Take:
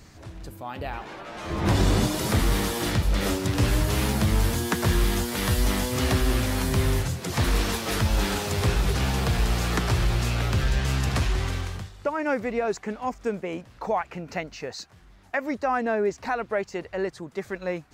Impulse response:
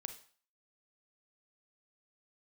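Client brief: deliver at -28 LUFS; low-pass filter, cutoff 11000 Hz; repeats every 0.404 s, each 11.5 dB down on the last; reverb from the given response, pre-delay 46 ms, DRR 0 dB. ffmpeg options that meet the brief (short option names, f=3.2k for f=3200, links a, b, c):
-filter_complex "[0:a]lowpass=11k,aecho=1:1:404|808|1212:0.266|0.0718|0.0194,asplit=2[a][b];[1:a]atrim=start_sample=2205,adelay=46[c];[b][c]afir=irnorm=-1:irlink=0,volume=3dB[d];[a][d]amix=inputs=2:normalize=0,volume=-5.5dB"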